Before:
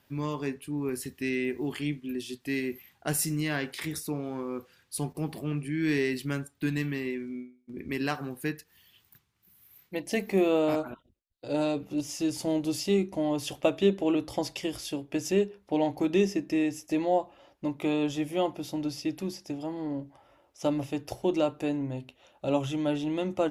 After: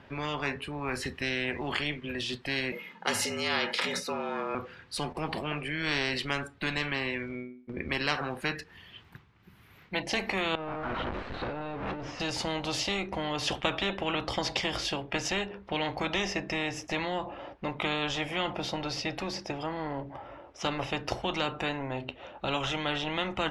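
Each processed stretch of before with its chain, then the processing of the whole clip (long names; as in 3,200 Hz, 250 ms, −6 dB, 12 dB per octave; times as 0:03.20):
0:02.72–0:04.55: comb filter 2.5 ms, depth 50% + frequency shifter +100 Hz
0:10.55–0:12.20: converter with a step at zero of −32 dBFS + downward compressor 16 to 1, threshold −35 dBFS + head-to-tape spacing loss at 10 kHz 27 dB
whole clip: low-pass filter 2,300 Hz 12 dB per octave; noise reduction from a noise print of the clip's start 6 dB; every bin compressed towards the loudest bin 4 to 1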